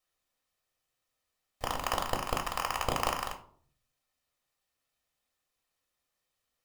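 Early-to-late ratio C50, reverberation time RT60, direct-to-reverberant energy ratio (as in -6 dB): 11.5 dB, 0.55 s, 2.5 dB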